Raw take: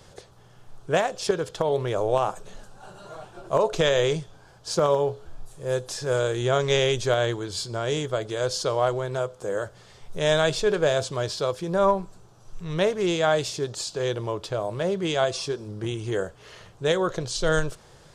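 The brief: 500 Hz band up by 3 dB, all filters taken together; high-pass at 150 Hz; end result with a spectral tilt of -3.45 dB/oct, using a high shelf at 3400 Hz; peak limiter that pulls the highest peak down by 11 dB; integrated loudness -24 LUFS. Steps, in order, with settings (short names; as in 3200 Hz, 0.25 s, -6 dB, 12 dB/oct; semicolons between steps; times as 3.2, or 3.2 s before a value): HPF 150 Hz; bell 500 Hz +3.5 dB; high shelf 3400 Hz +5.5 dB; gain +3 dB; limiter -13.5 dBFS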